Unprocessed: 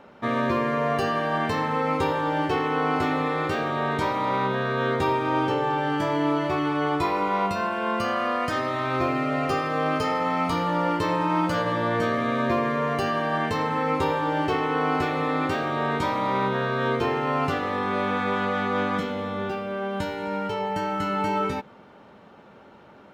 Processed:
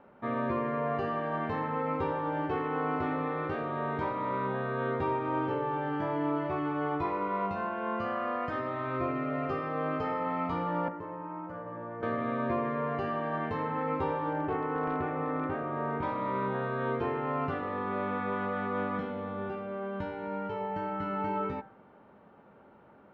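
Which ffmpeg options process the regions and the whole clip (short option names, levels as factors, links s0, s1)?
-filter_complex "[0:a]asettb=1/sr,asplit=3[s0][s1][s2];[s0]atrim=end=10.884[s3];[s1]atrim=start=10.88:end=12.03,asetpts=PTS-STARTPTS,afade=t=in:d=0.004:c=qsin,afade=t=out:st=1.146:d=0.004:c=qsin,equalizer=f=3900:t=o:w=1.1:g=-12.5,acrossover=split=350|1800[s4][s5][s6];[s4]acompressor=threshold=0.01:ratio=4[s7];[s5]acompressor=threshold=0.02:ratio=4[s8];[s6]acompressor=threshold=0.002:ratio=4[s9];[s7][s8][s9]amix=inputs=3:normalize=0[s10];[s2]atrim=start=12.026[s11];[s3][s10]acrossfade=d=0.004:c1=hsin:c2=qsin[s12];[s12][s11]acrossfade=d=0.004:c1=qsin:c2=hsin,asettb=1/sr,asplit=3[s13][s14][s15];[s13]atrim=end=14.334[s16];[s14]atrim=start=14.33:end=16.03,asetpts=PTS-STARTPTS,afade=t=in:d=0.004:c=qsin,afade=t=out:st=1.696:d=0.004:c=qsin,lowpass=2100,aeval=exprs='0.15*(abs(mod(val(0)/0.15+3,4)-2)-1)':c=same[s17];[s15]atrim=start=16.026[s18];[s16][s17]acrossfade=d=0.004:c1=hsin:c2=qsin[s19];[s19][s18]acrossfade=d=0.004:c1=qsin:c2=hsin,lowpass=1800,bandreject=f=60.31:t=h:w=4,bandreject=f=120.62:t=h:w=4,bandreject=f=180.93:t=h:w=4,bandreject=f=241.24:t=h:w=4,bandreject=f=301.55:t=h:w=4,bandreject=f=361.86:t=h:w=4,bandreject=f=422.17:t=h:w=4,bandreject=f=482.48:t=h:w=4,bandreject=f=542.79:t=h:w=4,bandreject=f=603.1:t=h:w=4,bandreject=f=663.41:t=h:w=4,bandreject=f=723.72:t=h:w=4,bandreject=f=784.03:t=h:w=4,bandreject=f=844.34:t=h:w=4,bandreject=f=904.65:t=h:w=4,bandreject=f=964.96:t=h:w=4,bandreject=f=1025.27:t=h:w=4,bandreject=f=1085.58:t=h:w=4,bandreject=f=1145.89:t=h:w=4,bandreject=f=1206.2:t=h:w=4,bandreject=f=1266.51:t=h:w=4,bandreject=f=1326.82:t=h:w=4,bandreject=f=1387.13:t=h:w=4,bandreject=f=1447.44:t=h:w=4,bandreject=f=1507.75:t=h:w=4,bandreject=f=1568.06:t=h:w=4,bandreject=f=1628.37:t=h:w=4,bandreject=f=1688.68:t=h:w=4,bandreject=f=1748.99:t=h:w=4,bandreject=f=1809.3:t=h:w=4,bandreject=f=1869.61:t=h:w=4,bandreject=f=1929.92:t=h:w=4,bandreject=f=1990.23:t=h:w=4,bandreject=f=2050.54:t=h:w=4,bandreject=f=2110.85:t=h:w=4,bandreject=f=2171.16:t=h:w=4,bandreject=f=2231.47:t=h:w=4,bandreject=f=2291.78:t=h:w=4,volume=0.473"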